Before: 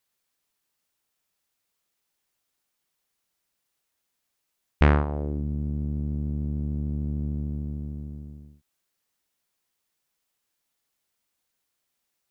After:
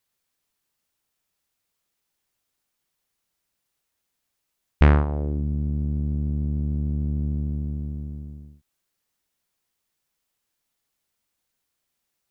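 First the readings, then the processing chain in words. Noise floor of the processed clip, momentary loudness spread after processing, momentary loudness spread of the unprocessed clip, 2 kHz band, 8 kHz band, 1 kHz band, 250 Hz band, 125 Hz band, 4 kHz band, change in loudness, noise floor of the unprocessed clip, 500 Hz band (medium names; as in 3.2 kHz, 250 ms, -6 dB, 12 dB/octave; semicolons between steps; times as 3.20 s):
-79 dBFS, 16 LU, 15 LU, 0.0 dB, no reading, 0.0 dB, +2.0 dB, +3.5 dB, 0.0 dB, +3.0 dB, -80 dBFS, +0.5 dB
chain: bass shelf 170 Hz +5 dB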